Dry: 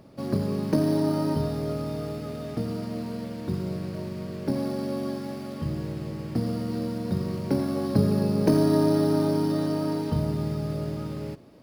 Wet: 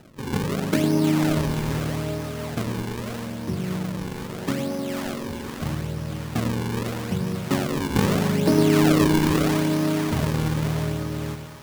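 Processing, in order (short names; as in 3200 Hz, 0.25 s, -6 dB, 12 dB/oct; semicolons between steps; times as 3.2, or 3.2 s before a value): high shelf 11000 Hz +9 dB; decimation with a swept rate 39×, swing 160% 0.79 Hz; on a send: split-band echo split 700 Hz, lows 0.103 s, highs 0.497 s, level -7.5 dB; on the sum: gain +1 dB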